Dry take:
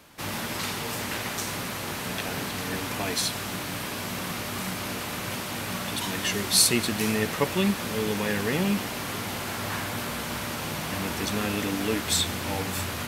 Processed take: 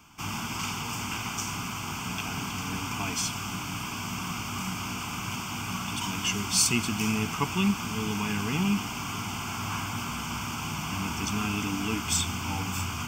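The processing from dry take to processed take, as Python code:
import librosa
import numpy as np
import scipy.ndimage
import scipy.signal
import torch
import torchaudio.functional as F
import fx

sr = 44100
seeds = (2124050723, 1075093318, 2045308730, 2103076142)

y = fx.peak_eq(x, sr, hz=360.0, db=-3.5, octaves=0.26)
y = fx.fixed_phaser(y, sr, hz=2700.0, stages=8)
y = y * librosa.db_to_amplitude(1.5)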